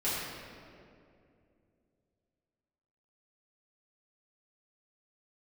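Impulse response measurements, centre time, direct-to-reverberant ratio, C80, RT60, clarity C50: 130 ms, −12.0 dB, 0.0 dB, 2.5 s, −2.0 dB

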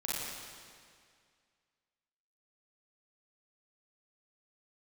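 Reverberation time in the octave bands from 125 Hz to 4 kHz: 2.1, 2.1, 2.1, 2.1, 2.1, 1.9 seconds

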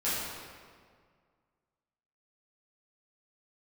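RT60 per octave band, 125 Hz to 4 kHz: 2.2, 2.0, 2.0, 1.8, 1.6, 1.3 seconds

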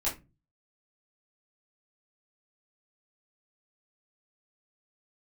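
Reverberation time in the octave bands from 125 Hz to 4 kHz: 0.60, 0.45, 0.30, 0.20, 0.20, 0.15 seconds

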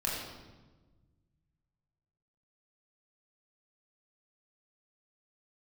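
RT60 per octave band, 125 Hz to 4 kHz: 2.6, 1.9, 1.4, 1.1, 1.0, 0.95 seconds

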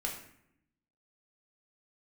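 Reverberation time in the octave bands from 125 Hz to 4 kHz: 1.1, 1.1, 0.75, 0.70, 0.70, 0.50 seconds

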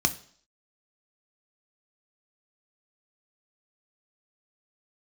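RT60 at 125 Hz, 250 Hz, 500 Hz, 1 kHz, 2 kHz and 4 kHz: 0.45, 0.55, 0.55, 0.55, 0.50, 0.65 seconds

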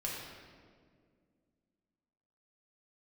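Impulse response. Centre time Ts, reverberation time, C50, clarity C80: 91 ms, 2.0 s, 0.0 dB, 2.0 dB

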